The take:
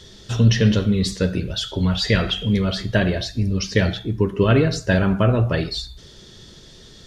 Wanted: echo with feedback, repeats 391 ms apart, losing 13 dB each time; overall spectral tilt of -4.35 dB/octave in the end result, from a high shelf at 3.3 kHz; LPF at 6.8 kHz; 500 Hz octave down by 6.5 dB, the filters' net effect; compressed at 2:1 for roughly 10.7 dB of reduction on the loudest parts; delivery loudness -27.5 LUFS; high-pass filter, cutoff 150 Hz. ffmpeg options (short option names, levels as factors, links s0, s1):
-af "highpass=150,lowpass=6800,equalizer=f=500:t=o:g=-8.5,highshelf=f=3300:g=6.5,acompressor=threshold=0.0178:ratio=2,aecho=1:1:391|782|1173:0.224|0.0493|0.0108,volume=1.68"